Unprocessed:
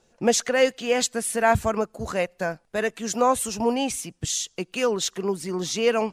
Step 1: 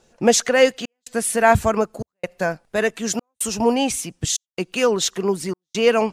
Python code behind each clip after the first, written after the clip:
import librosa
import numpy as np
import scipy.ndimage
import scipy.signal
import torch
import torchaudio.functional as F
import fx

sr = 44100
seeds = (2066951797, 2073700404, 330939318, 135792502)

y = fx.step_gate(x, sr, bpm=141, pattern='xxxxxxxx..x', floor_db=-60.0, edge_ms=4.5)
y = y * 10.0 ** (5.0 / 20.0)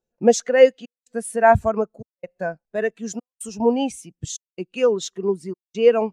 y = fx.spectral_expand(x, sr, expansion=1.5)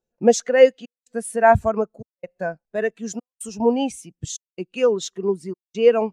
y = x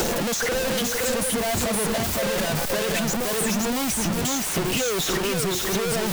y = np.sign(x) * np.sqrt(np.mean(np.square(x)))
y = y + 10.0 ** (-3.5 / 20.0) * np.pad(y, (int(517 * sr / 1000.0), 0))[:len(y)]
y = fx.band_squash(y, sr, depth_pct=100)
y = y * 10.0 ** (-5.0 / 20.0)